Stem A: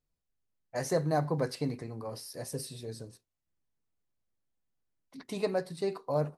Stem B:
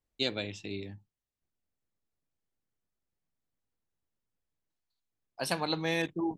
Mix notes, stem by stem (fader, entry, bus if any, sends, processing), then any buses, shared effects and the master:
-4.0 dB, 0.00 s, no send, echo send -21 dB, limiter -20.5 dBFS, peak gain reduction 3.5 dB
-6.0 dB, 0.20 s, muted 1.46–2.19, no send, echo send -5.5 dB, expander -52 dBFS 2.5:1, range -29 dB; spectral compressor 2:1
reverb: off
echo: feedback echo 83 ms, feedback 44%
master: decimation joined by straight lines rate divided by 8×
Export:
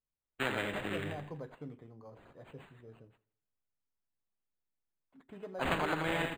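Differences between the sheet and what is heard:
stem A -4.0 dB -> -12.5 dB; stem B -6.0 dB -> +1.0 dB

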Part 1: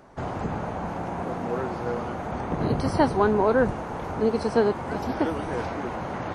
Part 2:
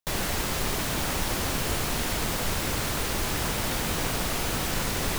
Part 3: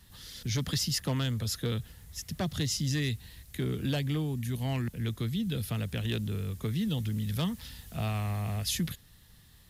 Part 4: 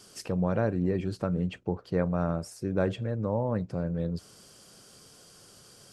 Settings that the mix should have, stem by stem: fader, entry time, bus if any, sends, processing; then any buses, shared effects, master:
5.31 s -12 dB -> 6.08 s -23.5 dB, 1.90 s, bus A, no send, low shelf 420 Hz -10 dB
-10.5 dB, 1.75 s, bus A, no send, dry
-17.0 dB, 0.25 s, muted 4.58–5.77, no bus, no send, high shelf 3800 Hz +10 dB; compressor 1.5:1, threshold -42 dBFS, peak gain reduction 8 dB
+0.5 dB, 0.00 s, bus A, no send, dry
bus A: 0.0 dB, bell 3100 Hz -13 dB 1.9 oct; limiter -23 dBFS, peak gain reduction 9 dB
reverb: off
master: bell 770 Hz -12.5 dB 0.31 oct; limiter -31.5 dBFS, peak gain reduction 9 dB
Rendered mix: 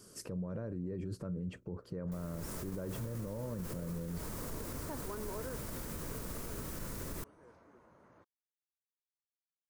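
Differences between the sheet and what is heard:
stem 2: entry 1.75 s -> 2.05 s; stem 3: muted

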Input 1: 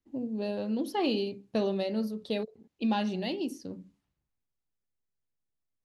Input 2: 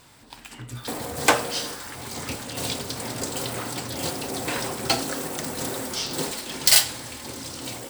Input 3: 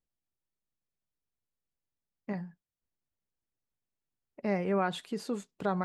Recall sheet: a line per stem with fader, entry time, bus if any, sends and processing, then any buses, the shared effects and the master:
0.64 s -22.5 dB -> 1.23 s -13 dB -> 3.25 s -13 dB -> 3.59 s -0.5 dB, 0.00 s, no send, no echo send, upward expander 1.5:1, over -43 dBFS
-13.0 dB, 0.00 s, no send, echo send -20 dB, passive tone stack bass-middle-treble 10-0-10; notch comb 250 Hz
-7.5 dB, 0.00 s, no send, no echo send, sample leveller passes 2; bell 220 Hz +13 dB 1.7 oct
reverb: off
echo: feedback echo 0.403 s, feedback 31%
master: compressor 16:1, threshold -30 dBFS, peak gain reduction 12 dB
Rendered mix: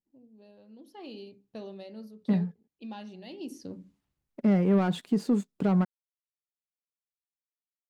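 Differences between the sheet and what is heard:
stem 1: missing upward expander 1.5:1, over -43 dBFS; stem 2: muted; master: missing compressor 16:1, threshold -30 dBFS, peak gain reduction 12 dB

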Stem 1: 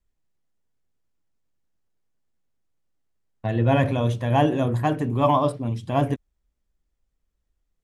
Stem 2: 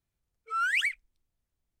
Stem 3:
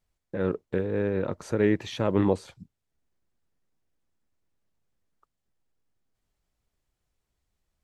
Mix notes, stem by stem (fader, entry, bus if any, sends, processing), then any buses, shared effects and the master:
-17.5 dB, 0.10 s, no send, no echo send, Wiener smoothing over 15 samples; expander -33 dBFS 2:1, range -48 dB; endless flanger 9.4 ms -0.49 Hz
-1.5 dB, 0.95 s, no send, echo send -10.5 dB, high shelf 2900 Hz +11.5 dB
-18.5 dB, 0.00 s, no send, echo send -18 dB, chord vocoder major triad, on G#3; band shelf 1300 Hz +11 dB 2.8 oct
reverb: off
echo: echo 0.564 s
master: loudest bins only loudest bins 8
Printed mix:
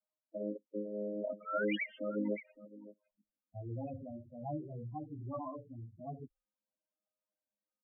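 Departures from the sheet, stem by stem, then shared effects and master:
stem 2 -1.5 dB -> -11.5 dB; stem 3 -18.5 dB -> -12.0 dB

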